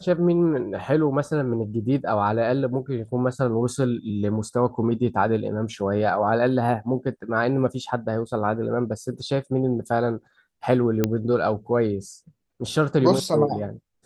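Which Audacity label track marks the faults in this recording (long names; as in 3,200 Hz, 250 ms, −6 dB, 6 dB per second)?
11.040000	11.040000	click −7 dBFS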